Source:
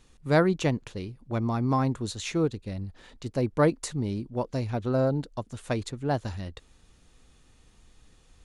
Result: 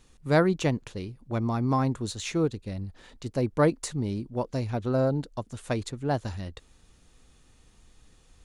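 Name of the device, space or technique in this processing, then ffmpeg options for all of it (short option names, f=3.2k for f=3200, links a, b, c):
exciter from parts: -filter_complex "[0:a]asplit=2[a][b];[b]highpass=4.3k,asoftclip=type=tanh:threshold=-37.5dB,volume=-12.5dB[c];[a][c]amix=inputs=2:normalize=0"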